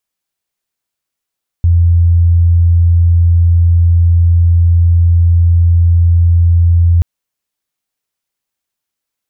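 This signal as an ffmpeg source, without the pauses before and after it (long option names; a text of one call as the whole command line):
ffmpeg -f lavfi -i "sine=frequency=85.4:duration=5.38:sample_rate=44100,volume=13.06dB" out.wav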